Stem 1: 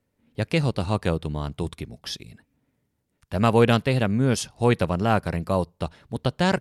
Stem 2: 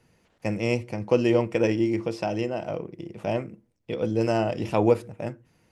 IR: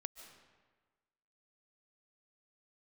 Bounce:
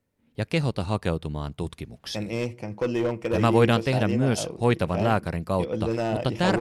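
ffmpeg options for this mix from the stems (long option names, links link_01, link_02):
-filter_complex "[0:a]aeval=exprs='0.531*(cos(1*acos(clip(val(0)/0.531,-1,1)))-cos(1*PI/2))+0.0237*(cos(3*acos(clip(val(0)/0.531,-1,1)))-cos(3*PI/2))':channel_layout=same,volume=-1dB[link_01];[1:a]dynaudnorm=framelen=280:gausssize=3:maxgain=5dB,asoftclip=type=hard:threshold=-12.5dB,adelay=1700,volume=-7dB[link_02];[link_01][link_02]amix=inputs=2:normalize=0"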